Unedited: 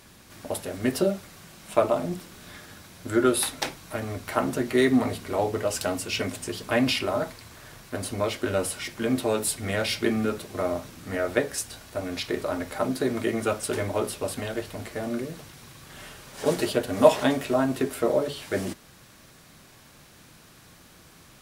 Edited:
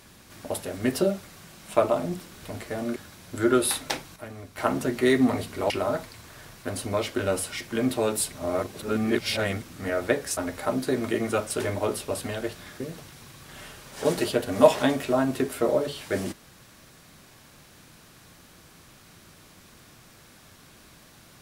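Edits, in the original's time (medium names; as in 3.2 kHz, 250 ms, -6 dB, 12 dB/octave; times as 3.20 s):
2.43–2.68 s: swap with 14.68–15.21 s
3.88–4.30 s: gain -8.5 dB
5.42–6.97 s: delete
9.59–10.89 s: reverse
11.64–12.50 s: delete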